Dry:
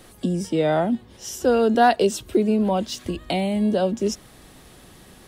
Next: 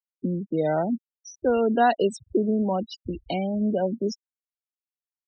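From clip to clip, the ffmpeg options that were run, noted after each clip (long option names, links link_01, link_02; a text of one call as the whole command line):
ffmpeg -i in.wav -af "afftfilt=real='re*gte(hypot(re,im),0.0794)':imag='im*gte(hypot(re,im),0.0794)':win_size=1024:overlap=0.75,volume=-3.5dB" out.wav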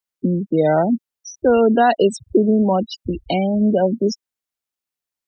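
ffmpeg -i in.wav -af "alimiter=level_in=12.5dB:limit=-1dB:release=50:level=0:latency=1,volume=-4.5dB" out.wav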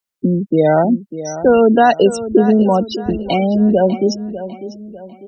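ffmpeg -i in.wav -filter_complex "[0:a]asplit=2[link_01][link_02];[link_02]adelay=598,lowpass=frequency=4500:poles=1,volume=-13dB,asplit=2[link_03][link_04];[link_04]adelay=598,lowpass=frequency=4500:poles=1,volume=0.41,asplit=2[link_05][link_06];[link_06]adelay=598,lowpass=frequency=4500:poles=1,volume=0.41,asplit=2[link_07][link_08];[link_08]adelay=598,lowpass=frequency=4500:poles=1,volume=0.41[link_09];[link_01][link_03][link_05][link_07][link_09]amix=inputs=5:normalize=0,volume=3.5dB" out.wav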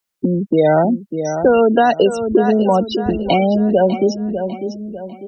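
ffmpeg -i in.wav -filter_complex "[0:a]acrossover=split=490|3700[link_01][link_02][link_03];[link_01]acompressor=threshold=-21dB:ratio=4[link_04];[link_02]acompressor=threshold=-18dB:ratio=4[link_05];[link_03]acompressor=threshold=-44dB:ratio=4[link_06];[link_04][link_05][link_06]amix=inputs=3:normalize=0,volume=4.5dB" out.wav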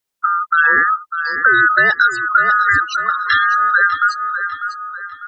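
ffmpeg -i in.wav -af "afftfilt=real='real(if(lt(b,960),b+48*(1-2*mod(floor(b/48),2)),b),0)':imag='imag(if(lt(b,960),b+48*(1-2*mod(floor(b/48),2)),b),0)':win_size=2048:overlap=0.75" out.wav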